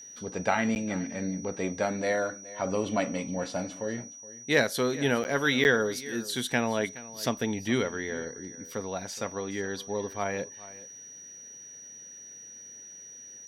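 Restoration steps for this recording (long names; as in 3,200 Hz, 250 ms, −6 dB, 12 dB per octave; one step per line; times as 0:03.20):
notch filter 5,800 Hz, Q 30
repair the gap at 0:00.75/0:05.24/0:05.64, 9.7 ms
echo removal 420 ms −18 dB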